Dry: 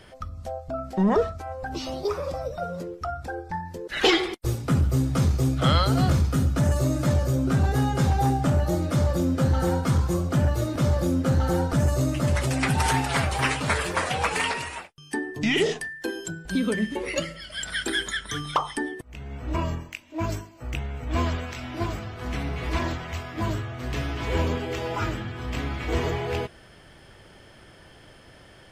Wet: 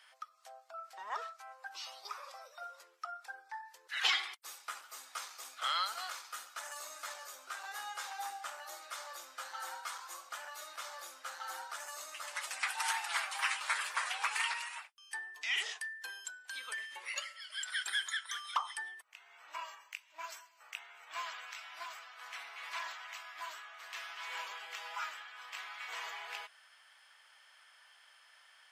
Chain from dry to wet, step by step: high-pass 980 Hz 24 dB/octave; trim -7.5 dB

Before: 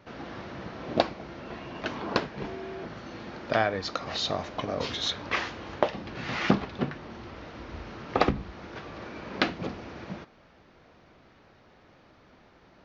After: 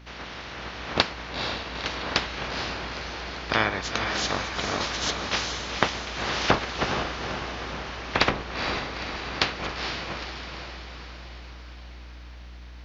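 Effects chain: spectral peaks clipped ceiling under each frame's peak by 20 dB; hum 60 Hz, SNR 16 dB; echo that smears into a reverb 465 ms, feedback 56%, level -5 dB; trim +1.5 dB

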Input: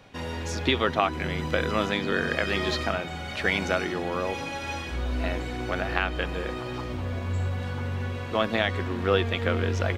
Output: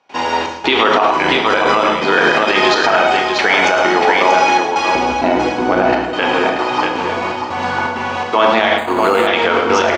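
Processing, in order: 4.95–5.93 s: tilt shelf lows +8 dB, about 640 Hz; trance gate ".xxxx..xxxx.xxx" 164 bpm -24 dB; cabinet simulation 400–6700 Hz, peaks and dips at 540 Hz -5 dB, 890 Hz +9 dB, 1.8 kHz -4 dB, 3.7 kHz -5 dB; multi-tap echo 107/636 ms -10/-6.5 dB; reverberation RT60 0.75 s, pre-delay 22 ms, DRR 4.5 dB; loudness maximiser +18.5 dB; 8.78–9.27 s: decimation joined by straight lines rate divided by 8×; trim -1 dB

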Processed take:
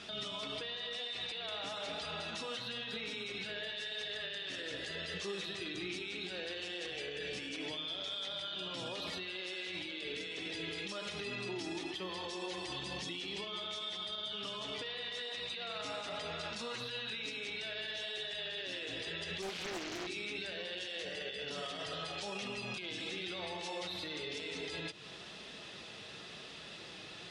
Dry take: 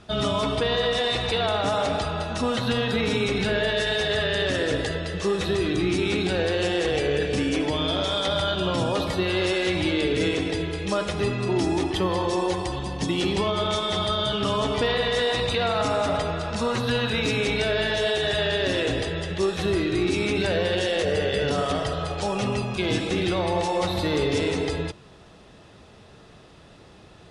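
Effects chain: frequency weighting D; compression 6:1, threshold -33 dBFS, peak gain reduction 18.5 dB; peak limiter -29.5 dBFS, peak gain reduction 10.5 dB; flange 0.98 Hz, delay 4.3 ms, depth 2.3 ms, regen -53%; 19.42–20.07 s: loudspeaker Doppler distortion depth 0.84 ms; trim +1.5 dB

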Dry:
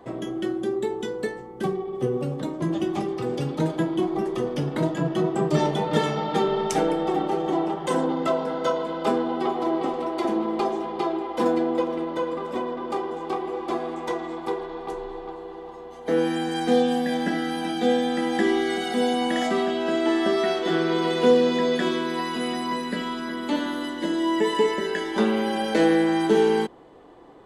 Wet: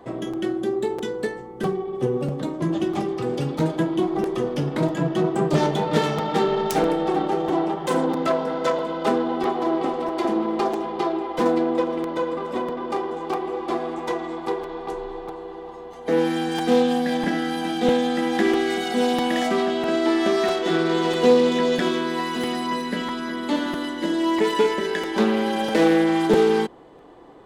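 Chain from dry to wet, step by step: self-modulated delay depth 0.13 ms; crackling interface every 0.65 s, samples 256, repeat, from 0.33 s; trim +2 dB

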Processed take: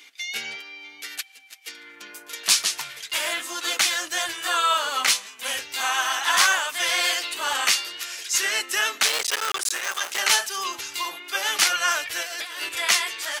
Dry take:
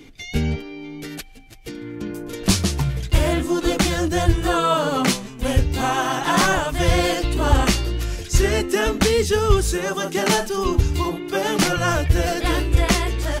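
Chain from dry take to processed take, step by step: 9.05–10.20 s: cycle switcher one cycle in 3, muted; high-pass 1.5 kHz 12 dB/octave; 12.23–12.69 s: compressor with a negative ratio -37 dBFS, ratio -1; trim +4 dB

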